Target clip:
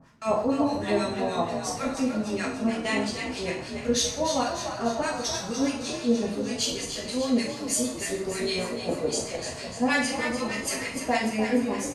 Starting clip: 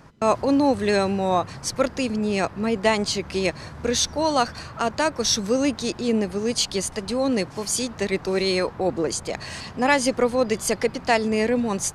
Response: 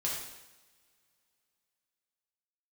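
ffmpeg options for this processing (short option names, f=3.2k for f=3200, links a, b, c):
-filter_complex "[0:a]acrossover=split=1100[a][b];[a]aeval=exprs='val(0)*(1-1/2+1/2*cos(2*PI*6.4*n/s))':c=same[c];[b]aeval=exprs='val(0)*(1-1/2-1/2*cos(2*PI*6.4*n/s))':c=same[d];[c][d]amix=inputs=2:normalize=0,asplit=8[e][f][g][h][i][j][k][l];[f]adelay=297,afreqshift=47,volume=-8dB[m];[g]adelay=594,afreqshift=94,volume=-13dB[n];[h]adelay=891,afreqshift=141,volume=-18.1dB[o];[i]adelay=1188,afreqshift=188,volume=-23.1dB[p];[j]adelay=1485,afreqshift=235,volume=-28.1dB[q];[k]adelay=1782,afreqshift=282,volume=-33.2dB[r];[l]adelay=2079,afreqshift=329,volume=-38.2dB[s];[e][m][n][o][p][q][r][s]amix=inputs=8:normalize=0[t];[1:a]atrim=start_sample=2205,asetrate=74970,aresample=44100[u];[t][u]afir=irnorm=-1:irlink=0"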